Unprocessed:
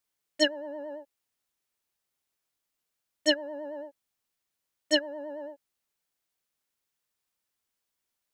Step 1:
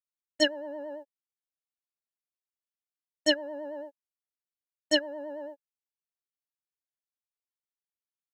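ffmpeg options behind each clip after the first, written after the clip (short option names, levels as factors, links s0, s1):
-af "agate=range=0.0794:threshold=0.00708:ratio=16:detection=peak"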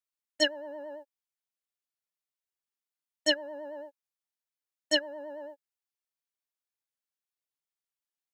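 -af "lowshelf=f=370:g=-8.5"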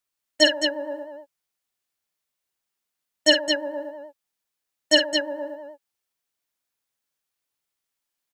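-af "aecho=1:1:49.56|215.7:0.398|0.501,volume=2.66"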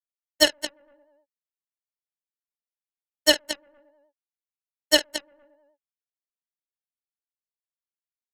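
-af "aeval=exprs='0.891*(cos(1*acos(clip(val(0)/0.891,-1,1)))-cos(1*PI/2))+0.0224*(cos(2*acos(clip(val(0)/0.891,-1,1)))-cos(2*PI/2))+0.02*(cos(4*acos(clip(val(0)/0.891,-1,1)))-cos(4*PI/2))+0.00794*(cos(5*acos(clip(val(0)/0.891,-1,1)))-cos(5*PI/2))+0.141*(cos(7*acos(clip(val(0)/0.891,-1,1)))-cos(7*PI/2))':c=same"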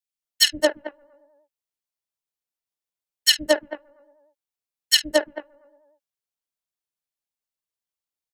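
-filter_complex "[0:a]acrossover=split=250|1700[s0][s1][s2];[s0]adelay=120[s3];[s1]adelay=220[s4];[s3][s4][s2]amix=inputs=3:normalize=0,volume=1.5"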